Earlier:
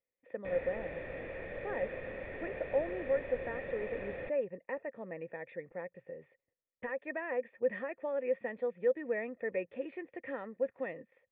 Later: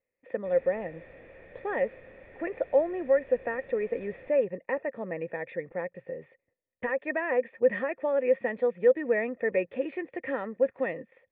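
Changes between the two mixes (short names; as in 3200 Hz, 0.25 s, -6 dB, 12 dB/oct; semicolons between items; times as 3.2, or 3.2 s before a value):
speech +8.5 dB; background -8.0 dB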